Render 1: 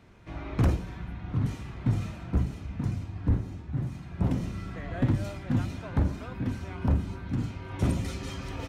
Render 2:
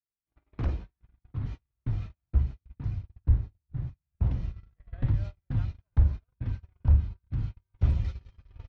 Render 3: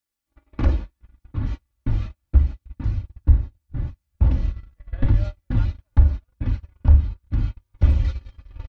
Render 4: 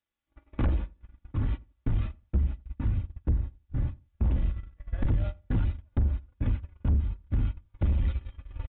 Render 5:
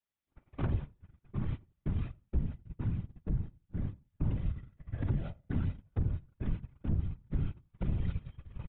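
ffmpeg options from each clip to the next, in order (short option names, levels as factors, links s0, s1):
-af "lowpass=f=5000:w=0.5412,lowpass=f=5000:w=1.3066,agate=range=0.00631:threshold=0.0251:ratio=16:detection=peak,asubboost=boost=11.5:cutoff=73,volume=0.376"
-filter_complex "[0:a]aecho=1:1:3.5:0.62,asplit=2[s0][s1];[s1]alimiter=limit=0.168:level=0:latency=1:release=391,volume=1.26[s2];[s0][s2]amix=inputs=2:normalize=0,volume=1.19"
-filter_complex "[0:a]acompressor=threshold=0.126:ratio=2,aresample=8000,asoftclip=type=tanh:threshold=0.106,aresample=44100,asplit=2[s0][s1];[s1]adelay=86,lowpass=f=1000:p=1,volume=0.0891,asplit=2[s2][s3];[s3]adelay=86,lowpass=f=1000:p=1,volume=0.24[s4];[s0][s2][s4]amix=inputs=3:normalize=0"
-af "afftfilt=real='hypot(re,im)*cos(2*PI*random(0))':imag='hypot(re,im)*sin(2*PI*random(1))':win_size=512:overlap=0.75"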